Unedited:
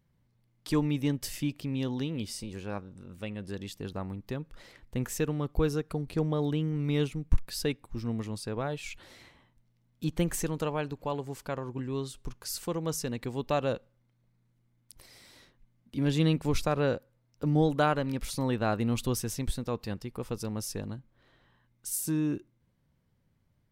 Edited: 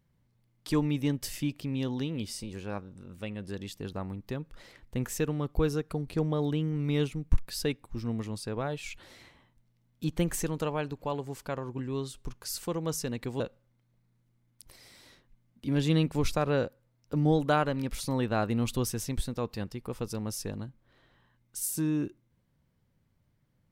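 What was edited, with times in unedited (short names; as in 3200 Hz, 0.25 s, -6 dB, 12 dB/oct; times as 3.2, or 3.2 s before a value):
13.4–13.7 cut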